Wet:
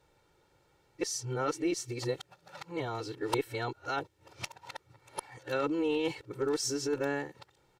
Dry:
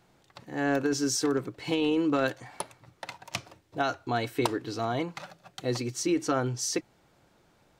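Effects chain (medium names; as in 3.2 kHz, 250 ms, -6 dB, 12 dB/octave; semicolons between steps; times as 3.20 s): reverse the whole clip; comb 2.2 ms, depth 59%; Chebyshev shaper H 2 -20 dB, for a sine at -10 dBFS; trim -5.5 dB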